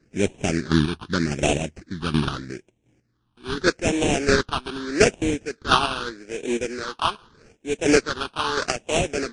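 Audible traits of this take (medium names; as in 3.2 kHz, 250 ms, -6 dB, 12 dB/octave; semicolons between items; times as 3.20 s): aliases and images of a low sample rate 2 kHz, jitter 20%; chopped level 1.4 Hz, depth 60%, duty 20%; phasing stages 6, 0.81 Hz, lowest notch 520–1300 Hz; MP3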